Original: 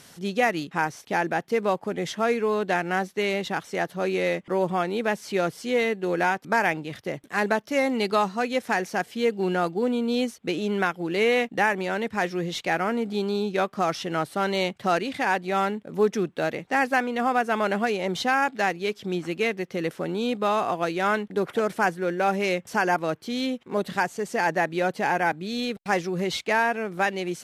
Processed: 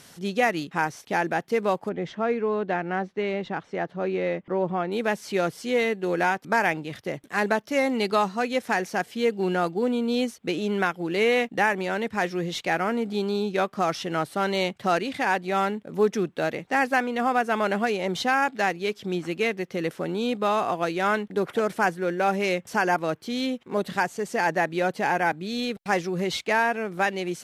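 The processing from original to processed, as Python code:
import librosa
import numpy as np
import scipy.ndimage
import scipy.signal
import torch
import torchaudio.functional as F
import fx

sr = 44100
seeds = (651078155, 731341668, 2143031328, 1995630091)

y = fx.spacing_loss(x, sr, db_at_10k=26, at=(1.89, 4.92))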